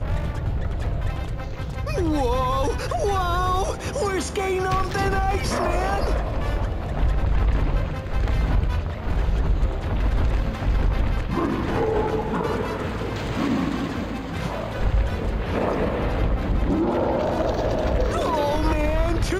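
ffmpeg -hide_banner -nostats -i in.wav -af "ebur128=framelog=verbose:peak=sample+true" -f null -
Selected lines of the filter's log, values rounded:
Integrated loudness:
  I:         -24.6 LUFS
  Threshold: -34.6 LUFS
Loudness range:
  LRA:         2.3 LU
  Threshold: -44.6 LUFS
  LRA low:   -25.6 LUFS
  LRA high:  -23.3 LUFS
Sample peak:
  Peak:      -10.4 dBFS
True peak:
  Peak:      -10.4 dBFS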